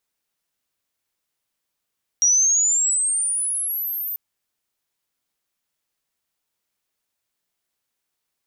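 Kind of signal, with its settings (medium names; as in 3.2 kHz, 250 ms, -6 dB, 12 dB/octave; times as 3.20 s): sweep logarithmic 5.7 kHz -> 14 kHz -13 dBFS -> -25 dBFS 1.94 s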